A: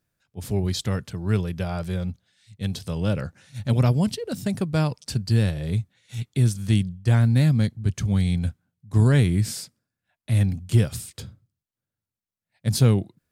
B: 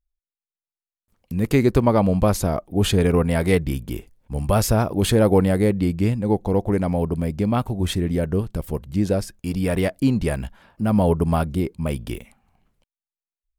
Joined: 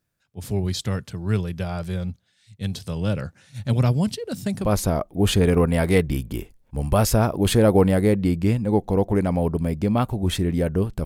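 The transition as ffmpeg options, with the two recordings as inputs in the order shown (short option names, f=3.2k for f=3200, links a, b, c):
-filter_complex "[0:a]apad=whole_dur=11.05,atrim=end=11.05,atrim=end=4.75,asetpts=PTS-STARTPTS[a];[1:a]atrim=start=2.14:end=8.62,asetpts=PTS-STARTPTS[b];[a][b]acrossfade=d=0.18:c1=tri:c2=tri"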